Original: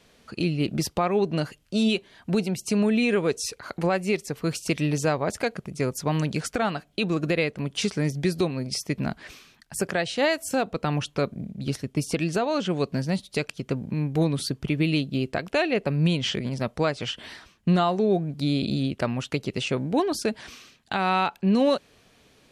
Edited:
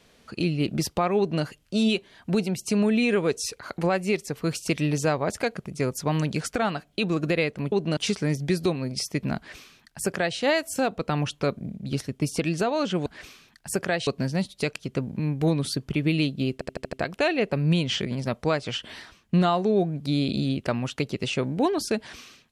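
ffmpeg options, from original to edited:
-filter_complex "[0:a]asplit=10[a][b][c][d][e][f][g][h][i][j];[a]atrim=end=7.722[k];[b]atrim=start=1.178:end=1.432[l];[c]atrim=start=7.718:end=12.812[m];[d]atrim=start=9.118:end=10.132[n];[e]atrim=start=12.808:end=15.352[o];[f]atrim=start=15.268:end=15.352[p];[g]atrim=start=15.268:end=15.352[q];[h]atrim=start=15.268:end=15.352[r];[i]atrim=start=15.268:end=15.352[s];[j]atrim=start=15.268[t];[k][l]acrossfade=d=0.004:c1=hsin:c2=hsin[u];[u][m]acrossfade=d=0.004:c1=hsin:c2=hsin[v];[v][n]acrossfade=d=0.004:c1=hsin:c2=hsin[w];[w][o]acrossfade=d=0.004:c1=hsin:c2=hsin[x];[x][p]acrossfade=d=0.004:c1=hsin:c2=hsin[y];[y][q]acrossfade=d=0.004:c1=hsin:c2=hsin[z];[z][r]acrossfade=d=0.004:c1=hsin:c2=hsin[aa];[aa][s]acrossfade=d=0.004:c1=hsin:c2=hsin[ab];[ab][t]acrossfade=d=0.004:c1=hsin:c2=hsin"

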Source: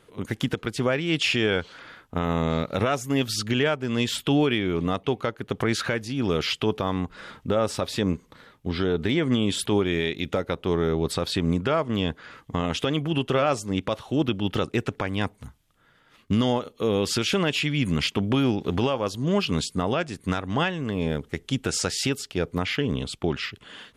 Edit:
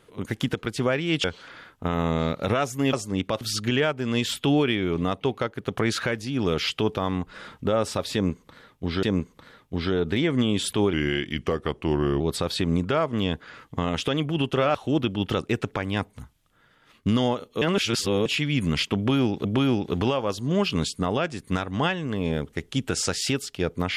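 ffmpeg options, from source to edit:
-filter_complex "[0:a]asplit=11[a][b][c][d][e][f][g][h][i][j][k];[a]atrim=end=1.242[l];[b]atrim=start=1.548:end=3.242[m];[c]atrim=start=13.508:end=13.992[n];[d]atrim=start=3.238:end=8.862[o];[e]atrim=start=7.958:end=9.864[p];[f]atrim=start=9.86:end=10.97,asetpts=PTS-STARTPTS,asetrate=38367,aresample=44100[q];[g]atrim=start=10.966:end=13.512[r];[h]atrim=start=13.988:end=16.862[s];[i]atrim=start=16.858:end=17.502,asetpts=PTS-STARTPTS,areverse[t];[j]atrim=start=17.498:end=18.692[u];[k]atrim=start=18.208[v];[l][m]acrossfade=d=0.004:c1=hsin:c2=hsin[w];[w][n]acrossfade=d=0.004:c1=hsin:c2=hsin[x];[x][o]acrossfade=d=0.004:c1=hsin:c2=hsin[y];[y][p]acrossfade=d=0.004:c1=hsin:c2=hsin[z];[z][q]acrossfade=d=0.004:c1=hsin:c2=hsin[aa];[aa][r]acrossfade=d=0.004:c1=hsin:c2=hsin[ab];[ab][s]acrossfade=d=0.004:c1=hsin:c2=hsin[ac];[ac][t]acrossfade=d=0.004:c1=hsin:c2=hsin[ad];[ad][u]acrossfade=d=0.004:c1=hsin:c2=hsin[ae];[ae][v]acrossfade=d=0.004:c1=hsin:c2=hsin"

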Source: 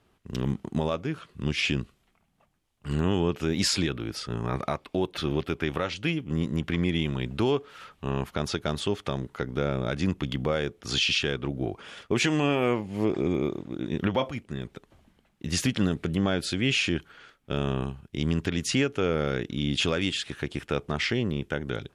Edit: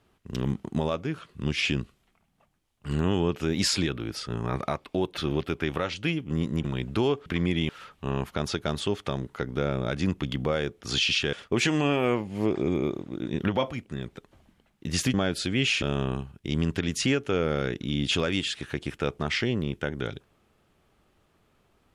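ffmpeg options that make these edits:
-filter_complex "[0:a]asplit=7[a][b][c][d][e][f][g];[a]atrim=end=6.642[h];[b]atrim=start=7.068:end=7.692[i];[c]atrim=start=6.638:end=7.072[j];[d]atrim=start=7.688:end=11.332[k];[e]atrim=start=11.918:end=15.732[l];[f]atrim=start=16.208:end=16.892[m];[g]atrim=start=17.508[n];[h][i]acrossfade=d=0.004:c1=hsin:c2=hsin[o];[o][j]acrossfade=d=0.004:c1=hsin:c2=hsin[p];[p][k]acrossfade=d=0.004:c1=hsin:c2=hsin[q];[q][l]acrossfade=d=0.004:c1=hsin:c2=hsin[r];[r][m]acrossfade=d=0.004:c1=hsin:c2=hsin[s];[s][n]acrossfade=d=0.004:c1=hsin:c2=hsin"

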